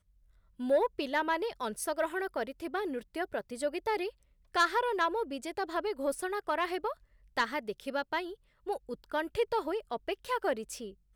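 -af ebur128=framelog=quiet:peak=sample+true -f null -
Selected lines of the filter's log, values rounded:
Integrated loudness:
  I:         -33.6 LUFS
  Threshold: -43.8 LUFS
Loudness range:
  LRA:         2.9 LU
  Threshold: -53.9 LUFS
  LRA low:   -35.4 LUFS
  LRA high:  -32.5 LUFS
Sample peak:
  Peak:      -18.5 dBFS
True peak:
  Peak:      -18.5 dBFS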